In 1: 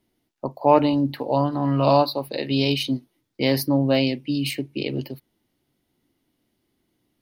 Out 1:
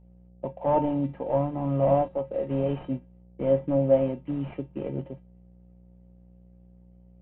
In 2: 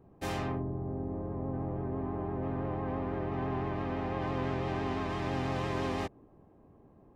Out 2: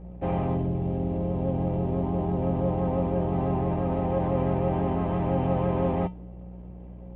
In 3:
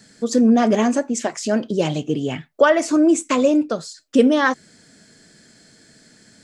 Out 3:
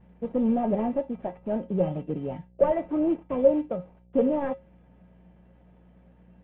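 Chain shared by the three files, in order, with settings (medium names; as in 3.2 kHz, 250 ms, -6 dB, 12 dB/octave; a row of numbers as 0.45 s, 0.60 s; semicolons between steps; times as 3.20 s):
CVSD coder 16 kbps; FFT filter 230 Hz 0 dB, 730 Hz +6 dB, 1.5 kHz -9 dB; mains buzz 60 Hz, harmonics 13, -52 dBFS -7 dB/octave; bass shelf 190 Hz +7.5 dB; feedback comb 180 Hz, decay 0.19 s, harmonics odd, mix 80%; normalise loudness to -27 LUFS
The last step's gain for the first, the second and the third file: +3.0 dB, +14.5 dB, -0.5 dB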